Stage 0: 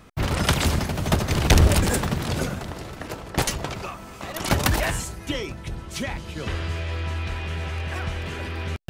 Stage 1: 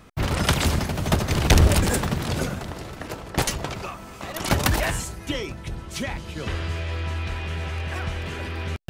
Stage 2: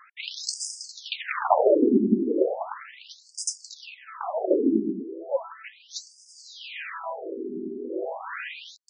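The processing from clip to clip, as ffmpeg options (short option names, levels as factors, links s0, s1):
-af anull
-af "tiltshelf=f=1400:g=5.5,afftfilt=real='re*between(b*sr/1024,280*pow(6900/280,0.5+0.5*sin(2*PI*0.36*pts/sr))/1.41,280*pow(6900/280,0.5+0.5*sin(2*PI*0.36*pts/sr))*1.41)':imag='im*between(b*sr/1024,280*pow(6900/280,0.5+0.5*sin(2*PI*0.36*pts/sr))/1.41,280*pow(6900/280,0.5+0.5*sin(2*PI*0.36*pts/sr))*1.41)':win_size=1024:overlap=0.75,volume=2"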